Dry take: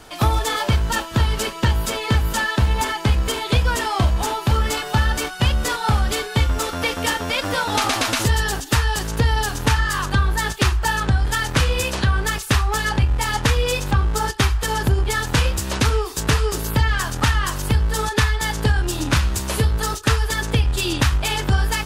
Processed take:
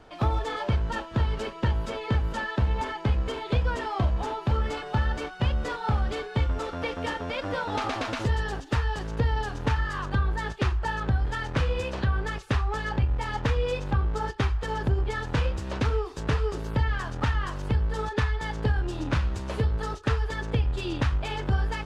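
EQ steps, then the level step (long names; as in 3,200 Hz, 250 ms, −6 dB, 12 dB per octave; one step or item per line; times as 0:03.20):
head-to-tape spacing loss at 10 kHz 22 dB
parametric band 530 Hz +3 dB 0.74 octaves
−6.5 dB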